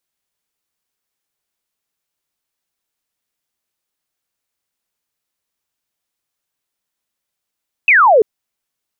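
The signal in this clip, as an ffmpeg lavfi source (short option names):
-f lavfi -i "aevalsrc='0.501*clip(t/0.002,0,1)*clip((0.34-t)/0.002,0,1)*sin(2*PI*2700*0.34/log(400/2700)*(exp(log(400/2700)*t/0.34)-1))':d=0.34:s=44100"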